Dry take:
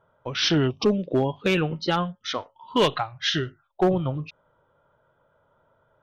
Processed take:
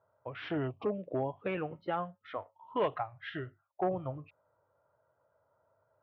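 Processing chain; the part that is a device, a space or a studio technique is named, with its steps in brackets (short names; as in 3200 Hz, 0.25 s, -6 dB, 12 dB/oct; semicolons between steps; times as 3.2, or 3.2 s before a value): bass cabinet (speaker cabinet 89–2100 Hz, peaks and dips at 97 Hz +5 dB, 160 Hz -8 dB, 230 Hz -8 dB, 370 Hz -4 dB, 660 Hz +5 dB, 1500 Hz -4 dB); gain -9 dB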